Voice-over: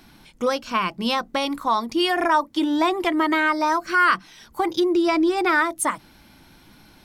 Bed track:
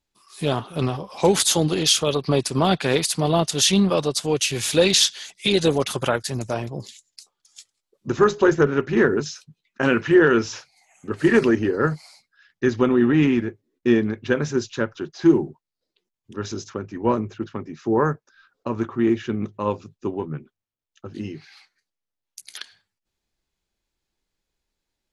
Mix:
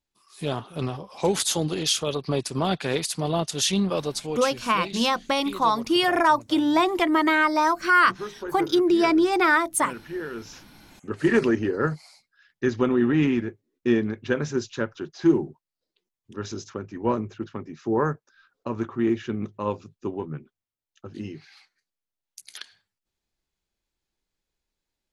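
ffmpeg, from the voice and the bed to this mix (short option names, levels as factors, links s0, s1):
-filter_complex "[0:a]adelay=3950,volume=1[s0];[1:a]volume=2.82,afade=t=out:st=4.11:d=0.52:silence=0.237137,afade=t=in:st=10.35:d=0.59:silence=0.188365[s1];[s0][s1]amix=inputs=2:normalize=0"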